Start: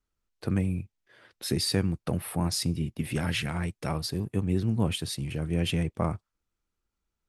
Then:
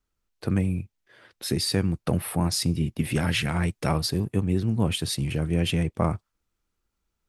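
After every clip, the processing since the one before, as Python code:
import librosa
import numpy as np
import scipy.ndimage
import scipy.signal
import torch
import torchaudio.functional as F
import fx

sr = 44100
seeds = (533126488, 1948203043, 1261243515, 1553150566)

y = fx.rider(x, sr, range_db=10, speed_s=0.5)
y = y * 10.0 ** (4.0 / 20.0)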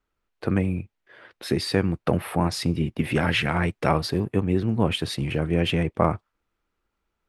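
y = fx.bass_treble(x, sr, bass_db=-7, treble_db=-14)
y = y * 10.0 ** (6.0 / 20.0)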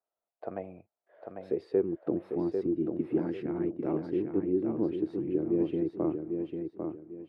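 y = fx.filter_sweep_bandpass(x, sr, from_hz=670.0, to_hz=330.0, start_s=1.06, end_s=2.04, q=5.9)
y = fx.echo_feedback(y, sr, ms=797, feedback_pct=30, wet_db=-5.5)
y = y * 10.0 ** (3.0 / 20.0)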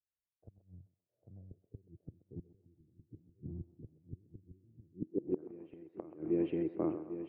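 y = fx.gate_flip(x, sr, shuts_db=-23.0, range_db=-25)
y = fx.filter_sweep_lowpass(y, sr, from_hz=100.0, to_hz=2500.0, start_s=4.89, end_s=5.52, q=2.2)
y = fx.echo_banded(y, sr, ms=130, feedback_pct=54, hz=910.0, wet_db=-11.0)
y = y * 10.0 ** (1.5 / 20.0)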